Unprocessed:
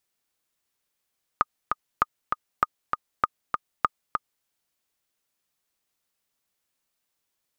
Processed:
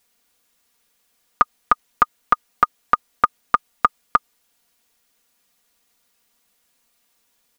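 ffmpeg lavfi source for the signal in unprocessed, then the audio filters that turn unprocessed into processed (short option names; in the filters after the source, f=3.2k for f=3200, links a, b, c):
-f lavfi -i "aevalsrc='pow(10,(-6-4.5*gte(mod(t,2*60/197),60/197))/20)*sin(2*PI*1230*mod(t,60/197))*exp(-6.91*mod(t,60/197)/0.03)':d=3.04:s=44100"
-af "aecho=1:1:4.2:0.63,alimiter=level_in=11.5dB:limit=-1dB:release=50:level=0:latency=1"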